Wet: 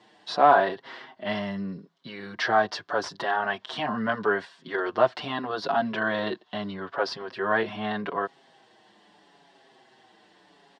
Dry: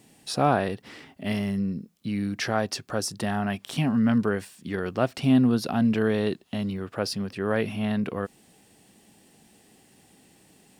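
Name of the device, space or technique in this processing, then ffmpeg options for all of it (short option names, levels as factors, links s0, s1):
barber-pole flanger into a guitar amplifier: -filter_complex "[0:a]aemphasis=mode=production:type=riaa,asplit=2[s0][s1];[s1]adelay=6.1,afreqshift=-0.79[s2];[s0][s2]amix=inputs=2:normalize=1,asoftclip=type=tanh:threshold=0.158,highpass=88,equalizer=f=240:t=q:w=4:g=-4,equalizer=f=370:t=q:w=4:g=4,equalizer=f=670:t=q:w=4:g=6,equalizer=f=1000:t=q:w=4:g=10,equalizer=f=1600:t=q:w=4:g=5,equalizer=f=2500:t=q:w=4:g=-10,lowpass=f=3600:w=0.5412,lowpass=f=3600:w=1.3066,volume=1.68"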